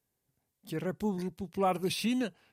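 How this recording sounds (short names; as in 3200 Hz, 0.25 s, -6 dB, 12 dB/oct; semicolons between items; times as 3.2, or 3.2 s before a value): noise floor -83 dBFS; spectral tilt -5.0 dB/oct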